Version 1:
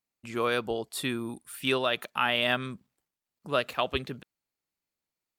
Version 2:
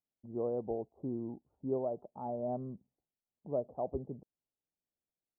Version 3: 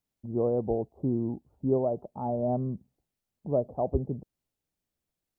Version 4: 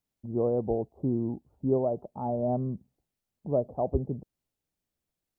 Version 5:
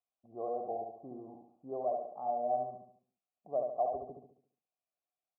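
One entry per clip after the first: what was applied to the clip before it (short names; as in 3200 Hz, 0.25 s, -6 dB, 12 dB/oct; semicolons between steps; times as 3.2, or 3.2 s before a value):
steep low-pass 810 Hz 48 dB/oct; gain -5 dB
low shelf 160 Hz +10.5 dB; gain +6.5 dB
nothing audible
vowel filter a; feedback echo 71 ms, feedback 45%, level -4 dB; gain +2 dB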